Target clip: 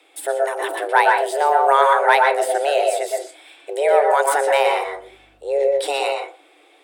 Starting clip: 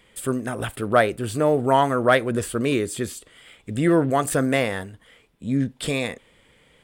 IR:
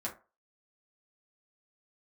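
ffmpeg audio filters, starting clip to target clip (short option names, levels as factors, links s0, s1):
-filter_complex "[0:a]afreqshift=280,asettb=1/sr,asplit=3[s0][s1][s2];[s0]atrim=end=4.854[s3];[s1]atrim=start=4.85:end=5.81,asetpts=PTS-STARTPTS,afade=t=in:d=0.004:c=qsin,afade=t=out:st=0.956:d=0.004:c=qsin,aeval=exprs='val(0)+0.000891*(sin(2*PI*50*n/s)+sin(2*PI*2*50*n/s)/2+sin(2*PI*3*50*n/s)/3+sin(2*PI*4*50*n/s)/4+sin(2*PI*5*50*n/s)/5)':c=same[s4];[s2]atrim=start=5.806[s5];[s3][s4]acrossfade=d=0.004:c1=hsin:c2=qsin[s6];[s6][s5]acrossfade=d=0.004:c1=qsin:c2=hsin,asplit=2[s7][s8];[1:a]atrim=start_sample=2205,lowpass=7400,adelay=118[s9];[s8][s9]afir=irnorm=-1:irlink=0,volume=0.708[s10];[s7][s10]amix=inputs=2:normalize=0,volume=1.19"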